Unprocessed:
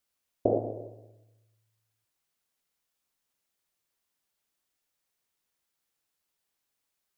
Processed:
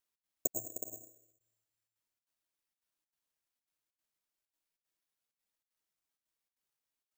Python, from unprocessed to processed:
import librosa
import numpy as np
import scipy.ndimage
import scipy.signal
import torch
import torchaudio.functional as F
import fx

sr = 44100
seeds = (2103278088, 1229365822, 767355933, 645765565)

y = fx.comb_fb(x, sr, f0_hz=320.0, decay_s=0.51, harmonics='all', damping=0.0, mix_pct=70)
y = fx.step_gate(y, sr, bpm=192, pattern='xx.xxx.xxxx', floor_db=-60.0, edge_ms=4.5)
y = fx.dereverb_blind(y, sr, rt60_s=1.9)
y = fx.echo_multitap(y, sr, ms=(307, 369), db=(-11.5, -10.0))
y = (np.kron(y[::6], np.eye(6)[0]) * 6)[:len(y)]
y = y * librosa.db_to_amplitude(-4.0)